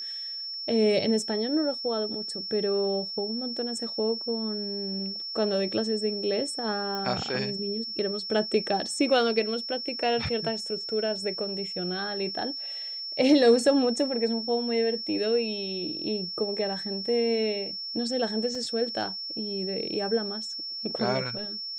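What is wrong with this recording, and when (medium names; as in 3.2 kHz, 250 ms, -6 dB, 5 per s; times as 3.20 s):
whine 5.4 kHz -33 dBFS
6.95 s: pop -21 dBFS
18.55 s: dropout 2.9 ms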